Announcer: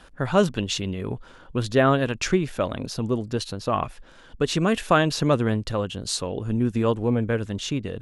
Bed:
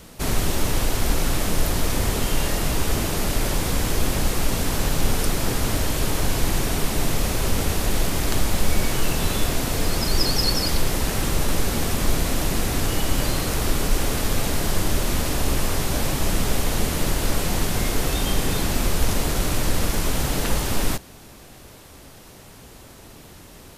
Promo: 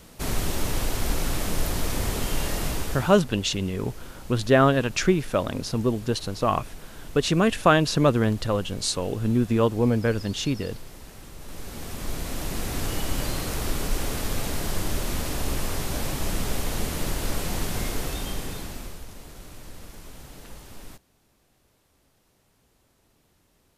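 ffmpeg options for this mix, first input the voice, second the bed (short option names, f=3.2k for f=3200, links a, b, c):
-filter_complex "[0:a]adelay=2750,volume=1dB[a];[1:a]volume=11dB,afade=t=out:st=2.66:d=0.56:silence=0.149624,afade=t=in:st=11.38:d=1.49:silence=0.16788,afade=t=out:st=17.82:d=1.23:silence=0.16788[b];[a][b]amix=inputs=2:normalize=0"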